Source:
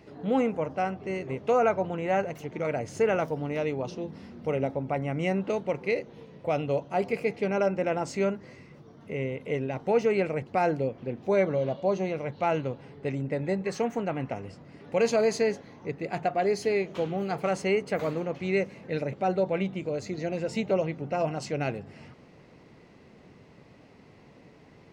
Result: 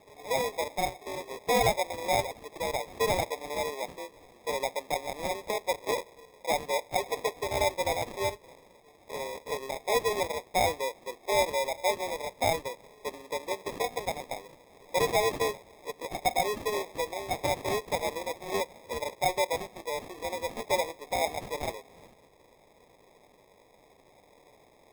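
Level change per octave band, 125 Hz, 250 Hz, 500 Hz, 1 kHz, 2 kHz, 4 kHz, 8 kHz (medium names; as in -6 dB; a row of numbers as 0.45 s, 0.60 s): -9.5 dB, -11.5 dB, -4.0 dB, +1.5 dB, +1.0 dB, +8.5 dB, +9.0 dB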